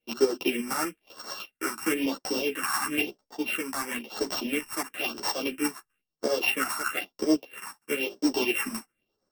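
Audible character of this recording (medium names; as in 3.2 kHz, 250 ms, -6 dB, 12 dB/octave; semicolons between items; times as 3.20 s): a buzz of ramps at a fixed pitch in blocks of 16 samples; phasing stages 4, 1 Hz, lowest notch 480–2600 Hz; tremolo saw up 8.3 Hz, depth 55%; a shimmering, thickened sound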